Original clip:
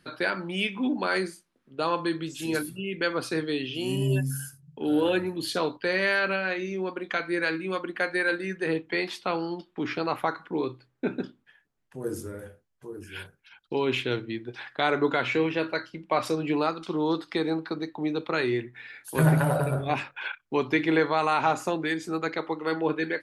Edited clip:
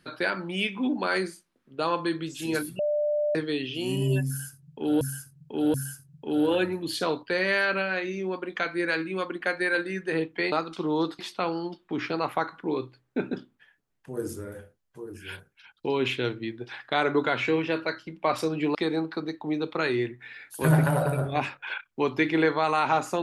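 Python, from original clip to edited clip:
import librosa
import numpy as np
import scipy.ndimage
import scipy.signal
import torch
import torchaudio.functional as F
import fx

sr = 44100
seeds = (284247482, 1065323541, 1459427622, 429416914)

y = fx.edit(x, sr, fx.bleep(start_s=2.79, length_s=0.56, hz=594.0, db=-22.5),
    fx.repeat(start_s=4.28, length_s=0.73, count=3),
    fx.move(start_s=16.62, length_s=0.67, to_s=9.06), tone=tone)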